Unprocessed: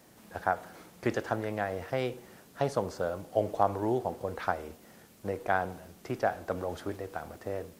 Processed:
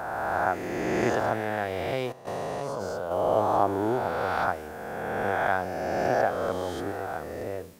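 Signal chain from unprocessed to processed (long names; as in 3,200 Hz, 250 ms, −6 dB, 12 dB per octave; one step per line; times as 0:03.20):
peak hold with a rise ahead of every peak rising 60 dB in 2.54 s
0:02.12–0:03.11: output level in coarse steps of 16 dB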